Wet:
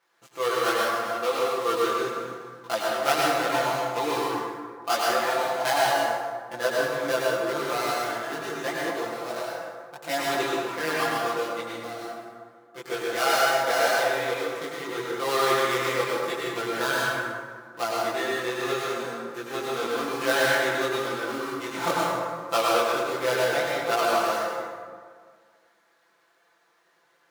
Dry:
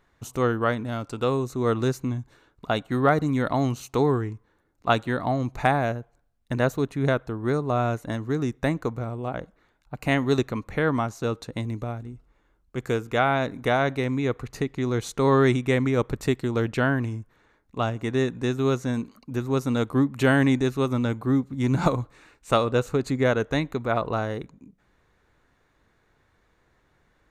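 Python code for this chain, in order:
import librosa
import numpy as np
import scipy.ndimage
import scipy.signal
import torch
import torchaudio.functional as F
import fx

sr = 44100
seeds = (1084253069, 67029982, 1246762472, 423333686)

y = fx.dead_time(x, sr, dead_ms=0.15)
y = scipy.signal.sosfilt(scipy.signal.butter(2, 560.0, 'highpass', fs=sr, output='sos'), y)
y = y + 0.93 * np.pad(y, (int(5.9 * sr / 1000.0), 0))[:len(y)]
y = fx.chorus_voices(y, sr, voices=2, hz=0.73, base_ms=21, depth_ms=4.1, mix_pct=55)
y = fx.rev_plate(y, sr, seeds[0], rt60_s=1.8, hf_ratio=0.5, predelay_ms=85, drr_db=-4.0)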